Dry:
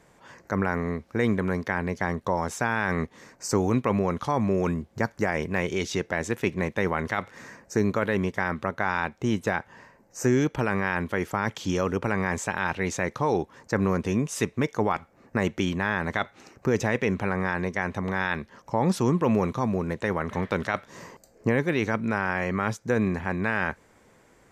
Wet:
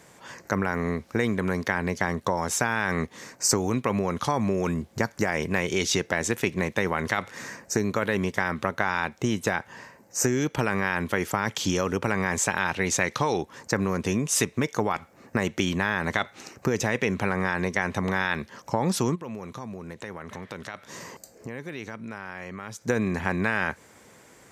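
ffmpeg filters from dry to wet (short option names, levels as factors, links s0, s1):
-filter_complex "[0:a]asettb=1/sr,asplit=3[s0][s1][s2];[s0]atrim=end=13.014[s3];[s1]atrim=start=13.01:end=13.41,asetpts=PTS-STARTPTS,afade=t=in:d=0.004:c=qsin,afade=t=out:st=0.396:d=0.004:c=qsin,equalizer=f=3300:t=o:w=2:g=7[s4];[s2]atrim=start=13.406[s5];[s3][s4]acrossfade=d=0.004:c1=hsin:c2=qsin[s6];[s6][s5]acrossfade=d=0.004:c1=qsin:c2=hsin,asplit=3[s7][s8][s9];[s7]afade=t=out:st=19.14:d=0.02[s10];[s8]acompressor=threshold=0.00708:ratio=3:attack=3.2:release=140:knee=1:detection=peak,afade=t=in:st=19.14:d=0.02,afade=t=out:st=22.86:d=0.02[s11];[s9]afade=t=in:st=22.86:d=0.02[s12];[s10][s11][s12]amix=inputs=3:normalize=0,acompressor=threshold=0.0562:ratio=6,highpass=71,highshelf=f=3000:g=8,volume=1.58"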